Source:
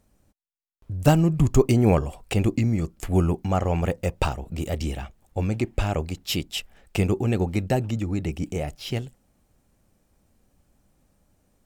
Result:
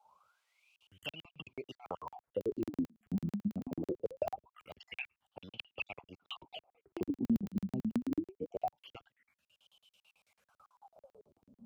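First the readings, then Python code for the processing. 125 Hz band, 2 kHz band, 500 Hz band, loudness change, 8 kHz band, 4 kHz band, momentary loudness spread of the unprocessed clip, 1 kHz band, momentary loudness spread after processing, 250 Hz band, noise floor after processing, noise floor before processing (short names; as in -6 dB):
-23.5 dB, -12.5 dB, -15.0 dB, -15.0 dB, under -25 dB, -14.5 dB, 12 LU, -14.0 dB, 15 LU, -12.0 dB, under -85 dBFS, -68 dBFS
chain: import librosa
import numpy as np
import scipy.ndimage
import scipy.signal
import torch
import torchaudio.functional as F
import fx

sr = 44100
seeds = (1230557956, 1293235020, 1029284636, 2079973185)

y = fx.spec_dropout(x, sr, seeds[0], share_pct=38)
y = fx.dynamic_eq(y, sr, hz=2800.0, q=3.4, threshold_db=-47.0, ratio=4.0, max_db=5)
y = fx.rider(y, sr, range_db=4, speed_s=2.0)
y = fx.peak_eq(y, sr, hz=12000.0, db=10.0, octaves=0.45)
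y = fx.quant_dither(y, sr, seeds[1], bits=12, dither='triangular')
y = fx.env_phaser(y, sr, low_hz=300.0, high_hz=1800.0, full_db=-26.0)
y = fx.wah_lfo(y, sr, hz=0.23, low_hz=200.0, high_hz=3100.0, q=22.0)
y = scipy.signal.sosfilt(scipy.signal.butter(2, 67.0, 'highpass', fs=sr, output='sos'), y)
y = fx.buffer_crackle(y, sr, first_s=0.76, period_s=0.11, block=2048, kind='zero')
y = fx.band_squash(y, sr, depth_pct=70)
y = y * librosa.db_to_amplitude(9.0)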